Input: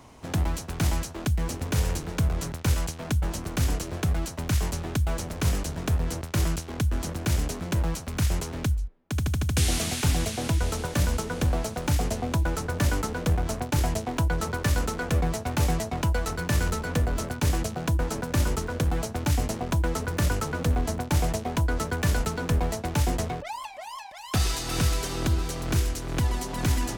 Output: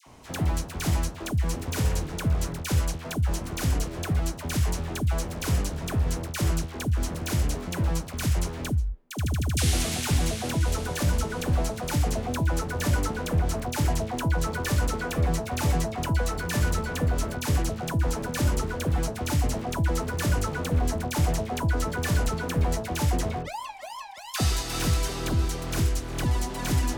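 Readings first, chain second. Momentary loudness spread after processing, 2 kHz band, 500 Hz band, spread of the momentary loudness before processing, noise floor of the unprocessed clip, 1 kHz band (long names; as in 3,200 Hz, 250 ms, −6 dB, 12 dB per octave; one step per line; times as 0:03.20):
3 LU, 0.0 dB, 0.0 dB, 3 LU, −39 dBFS, 0.0 dB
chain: all-pass dispersion lows, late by 66 ms, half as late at 1,100 Hz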